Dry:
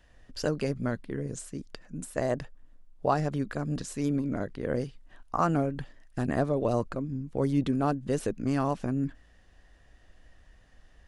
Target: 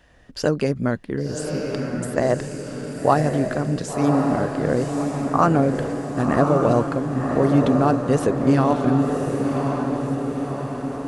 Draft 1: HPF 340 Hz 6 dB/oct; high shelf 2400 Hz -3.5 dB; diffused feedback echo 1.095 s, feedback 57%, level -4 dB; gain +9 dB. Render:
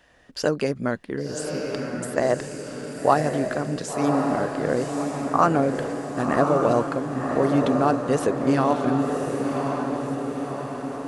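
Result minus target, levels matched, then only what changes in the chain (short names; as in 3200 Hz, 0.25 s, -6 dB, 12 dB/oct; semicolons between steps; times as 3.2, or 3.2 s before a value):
125 Hz band -4.5 dB
change: HPF 90 Hz 6 dB/oct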